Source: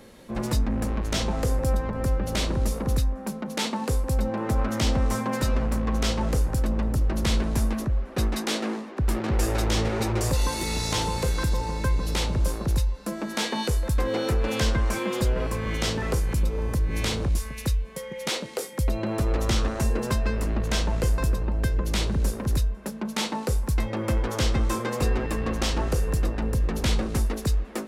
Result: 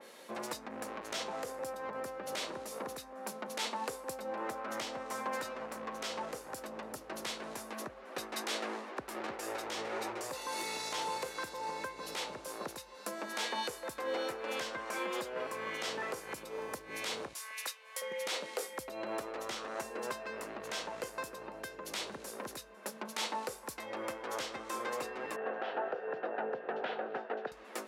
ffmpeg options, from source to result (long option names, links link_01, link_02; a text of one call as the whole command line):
ffmpeg -i in.wav -filter_complex "[0:a]asettb=1/sr,asplit=3[link_01][link_02][link_03];[link_01]atrim=end=12.554[link_04];[link_02]atrim=start=12.55:end=16.68,asetpts=PTS-STARTPTS,afade=type=in:duration=0.004:curve=qsin,afade=type=out:start_time=4.126:duration=0.004:curve=qsin,highpass=48[link_05];[link_03]atrim=start=16.676[link_06];[link_04][link_05]acrossfade=duration=0.004:curve1=hsin:curve2=qsin[link_07];[link_07][link_06]acrossfade=duration=0.004:curve1=qsin:curve2=hsin,asettb=1/sr,asplit=3[link_08][link_09][link_10];[link_08]atrim=end=17.334[link_11];[link_09]atrim=start=17.33:end=18.02,asetpts=PTS-STARTPTS,afade=type=in:duration=0.004:curve=qsin,afade=type=out:start_time=0.686:duration=0.004:curve=qsin,highpass=870[link_12];[link_10]atrim=start=18.016[link_13];[link_11][link_12]acrossfade=duration=0.004:curve1=hsin:curve2=qsin[link_14];[link_14][link_13]acrossfade=duration=0.004:curve1=qsin:curve2=hsin,asettb=1/sr,asplit=3[link_15][link_16][link_17];[link_15]atrim=end=25.364[link_18];[link_16]atrim=start=25.36:end=27.52,asetpts=PTS-STARTPTS,afade=type=in:duration=0.004:curve=qsin,afade=type=out:start_time=2.156:duration=0.004:curve=qsin,highpass=240,equalizer=frequency=300:width_type=q:width=4:gain=-5,equalizer=frequency=430:width_type=q:width=4:gain=4,equalizer=frequency=720:width_type=q:width=4:gain=8,equalizer=frequency=1100:width_type=q:width=4:gain=-8,equalizer=frequency=1500:width_type=q:width=4:gain=5,equalizer=frequency=2200:width_type=q:width=4:gain=-9,lowpass=frequency=2600:width=0.5412,lowpass=frequency=2600:width=1.3066[link_19];[link_17]atrim=start=27.516[link_20];[link_18][link_19]acrossfade=duration=0.004:curve1=hsin:curve2=qsin[link_21];[link_21][link_20]acrossfade=duration=0.004:curve1=qsin:curve2=hsin,alimiter=limit=-23dB:level=0:latency=1:release=229,highpass=520,adynamicequalizer=threshold=0.00316:dfrequency=2900:dqfactor=0.7:tfrequency=2900:tqfactor=0.7:attack=5:release=100:ratio=0.375:range=2.5:mode=cutabove:tftype=highshelf" out.wav